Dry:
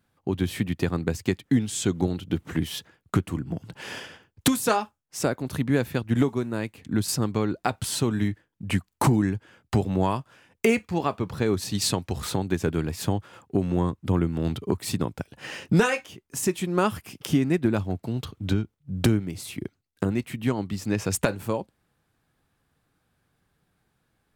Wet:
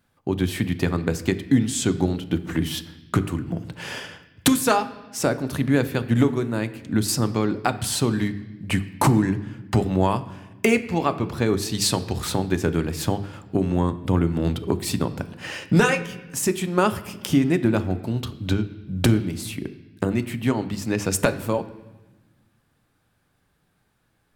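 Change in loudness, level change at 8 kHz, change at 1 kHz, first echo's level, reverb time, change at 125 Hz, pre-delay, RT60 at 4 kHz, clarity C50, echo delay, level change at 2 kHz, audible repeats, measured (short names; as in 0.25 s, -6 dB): +3.0 dB, +3.5 dB, +3.5 dB, none, 1.2 s, +3.0 dB, 3 ms, 1.1 s, 15.0 dB, none, +4.0 dB, none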